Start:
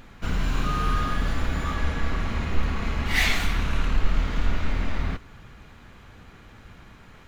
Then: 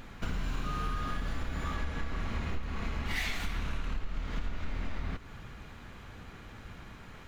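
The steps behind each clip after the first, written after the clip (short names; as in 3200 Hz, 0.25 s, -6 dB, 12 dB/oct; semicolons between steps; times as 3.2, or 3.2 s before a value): compressor 6:1, threshold -30 dBFS, peak gain reduction 17 dB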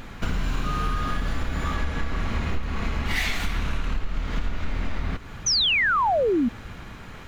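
painted sound fall, 5.46–6.49, 220–6300 Hz -29 dBFS; gain +8 dB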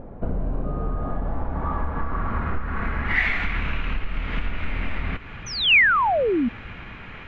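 low-pass sweep 600 Hz -> 2500 Hz, 0.71–3.78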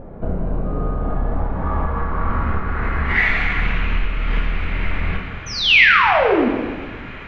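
plate-style reverb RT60 1.6 s, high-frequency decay 0.95×, DRR -1 dB; gain +1.5 dB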